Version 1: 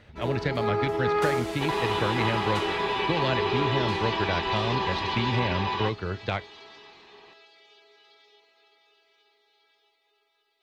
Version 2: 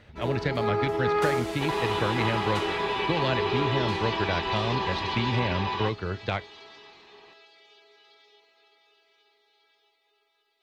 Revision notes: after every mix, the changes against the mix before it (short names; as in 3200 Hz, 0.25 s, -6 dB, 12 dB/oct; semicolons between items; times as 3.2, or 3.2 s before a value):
second sound: send -8.5 dB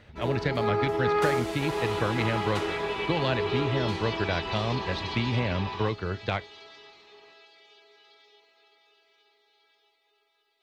second sound -6.5 dB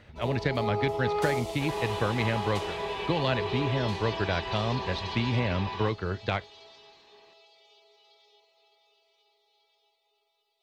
first sound: add fixed phaser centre 660 Hz, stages 4